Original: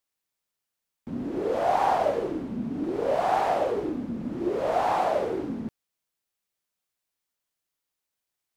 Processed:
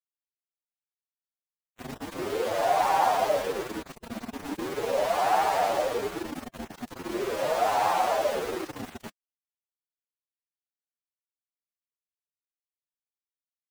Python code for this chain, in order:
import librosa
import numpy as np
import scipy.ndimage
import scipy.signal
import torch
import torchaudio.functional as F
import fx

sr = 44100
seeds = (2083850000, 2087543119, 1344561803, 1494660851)

y = fx.tilt_shelf(x, sr, db=-3.5, hz=690.0)
y = fx.hum_notches(y, sr, base_hz=50, count=7)
y = np.where(np.abs(y) >= 10.0 ** (-31.0 / 20.0), y, 0.0)
y = fx.stretch_vocoder(y, sr, factor=1.6)